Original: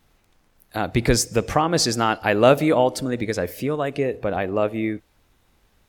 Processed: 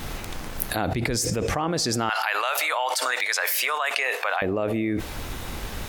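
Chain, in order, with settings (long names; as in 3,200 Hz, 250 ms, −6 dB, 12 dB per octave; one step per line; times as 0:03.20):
0:02.09–0:04.42: high-pass filter 930 Hz 24 dB per octave
envelope flattener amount 100%
level −11.5 dB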